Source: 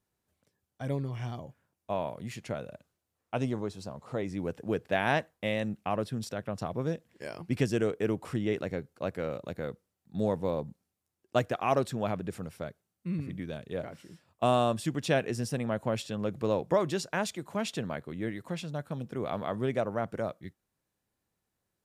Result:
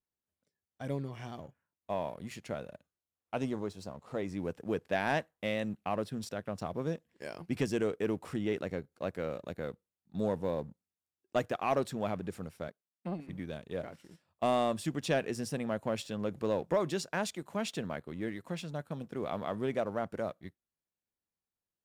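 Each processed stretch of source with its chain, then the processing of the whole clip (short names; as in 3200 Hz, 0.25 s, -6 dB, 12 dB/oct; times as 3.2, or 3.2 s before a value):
12.68–13.29 HPF 190 Hz 24 dB/oct + transient shaper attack +9 dB, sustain -6 dB + core saturation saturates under 510 Hz
whole clip: spectral noise reduction 7 dB; bell 120 Hz -8.5 dB 0.25 oct; sample leveller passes 1; gain -6 dB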